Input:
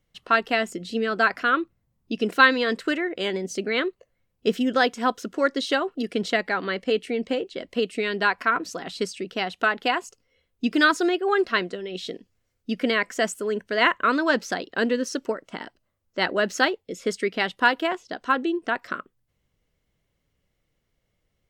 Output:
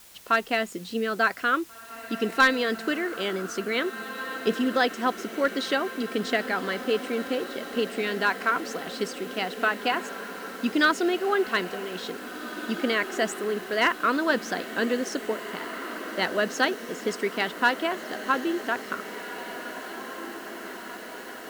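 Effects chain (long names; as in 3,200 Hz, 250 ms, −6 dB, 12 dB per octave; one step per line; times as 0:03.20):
feedback delay with all-pass diffusion 1,879 ms, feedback 68%, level −12 dB
bit-depth reduction 8 bits, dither triangular
asymmetric clip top −11 dBFS
level −2.5 dB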